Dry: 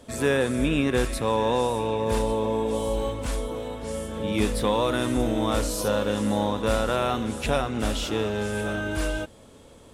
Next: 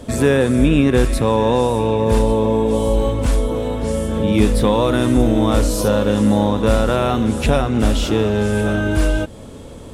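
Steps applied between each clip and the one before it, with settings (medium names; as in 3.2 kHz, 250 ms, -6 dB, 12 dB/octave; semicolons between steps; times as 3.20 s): in parallel at +3 dB: compression, threshold -33 dBFS, peak gain reduction 14 dB; on the sum: bass shelf 440 Hz +8 dB; trim +1.5 dB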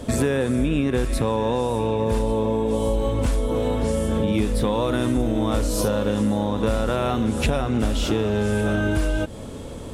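compression, threshold -19 dBFS, peak gain reduction 10.5 dB; trim +1 dB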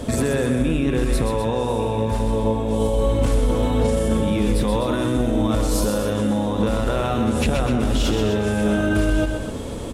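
peak limiter -17.5 dBFS, peak gain reduction 8.5 dB; on a send: loudspeakers at several distances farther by 44 m -6 dB, 87 m -10 dB; on the sum: trim +4.5 dB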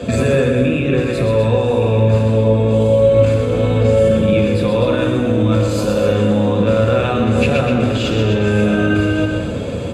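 peak limiter -12.5 dBFS, peak gain reduction 4.5 dB; reverberation RT60 1.0 s, pre-delay 3 ms, DRR 4 dB; trim -3.5 dB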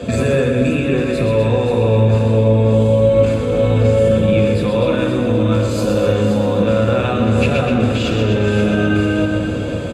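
delay 527 ms -9 dB; trim -1 dB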